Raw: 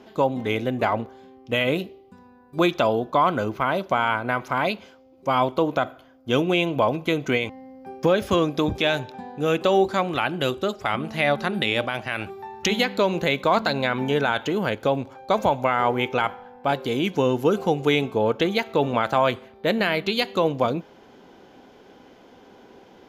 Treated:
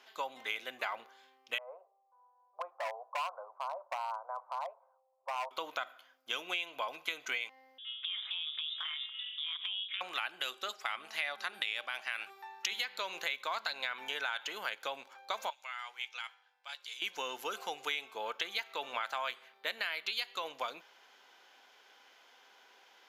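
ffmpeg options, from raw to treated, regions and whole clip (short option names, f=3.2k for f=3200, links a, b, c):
-filter_complex "[0:a]asettb=1/sr,asplit=3[a][b][c];[a]atrim=end=1.584[d];[b]atrim=start=1.58:end=5.51,asetpts=PTS-STARTPTS,afade=t=in:d=0.004:c=qsin,afade=t=out:st=3.926:d=0.004:c=qsin,asuperpass=centerf=740:order=8:qfactor=1.3,asoftclip=type=hard:threshold=-18dB[e];[c]atrim=start=5.506[f];[d][e]acrossfade=d=0.004:c1=hsin:c2=qsin[g];[g][f]acrossfade=d=0.004:c1=qsin:c2=hsin,asettb=1/sr,asplit=3[h][i][j];[h]atrim=end=7.784[k];[i]atrim=start=7.78:end=10.01,asetpts=PTS-STARTPTS,afade=t=in:d=0.004:c=qsin,afade=t=out:st=2.226:d=0.004:c=qsin,lowpass=f=3.1k:t=q:w=0.5098,lowpass=f=3.1k:t=q:w=0.6013,lowpass=f=3.1k:t=q:w=0.9,lowpass=f=3.1k:t=q:w=2.563,afreqshift=-3700,acompressor=threshold=-29dB:ratio=6:attack=3.2:release=140:knee=1:detection=peak,tremolo=f=270:d=0.667[l];[j]atrim=start=10.006[m];[k][l]acrossfade=d=0.004:c1=hsin:c2=qsin[n];[n][m]acrossfade=d=0.004:c1=qsin:c2=hsin,asettb=1/sr,asplit=3[o][p][q];[o]atrim=end=15.504[r];[p]atrim=start=15.5:end=17.02,asetpts=PTS-STARTPTS,afade=t=in:d=0.004:c=qsin,afade=t=out:st=1.516:d=0.004:c=qsin,lowpass=6.3k,aderivative,asplit=2[s][t];[t]adelay=14,volume=-13dB[u];[s][u]amix=inputs=2:normalize=0,atrim=end_sample=67032[v];[q]atrim=start=17.016[w];[r][v]acrossfade=d=0.004:c1=hsin:c2=qsin[x];[x][w]acrossfade=d=0.004:c1=qsin:c2=hsin,highpass=1.4k,acompressor=threshold=-31dB:ratio=4,volume=-2dB"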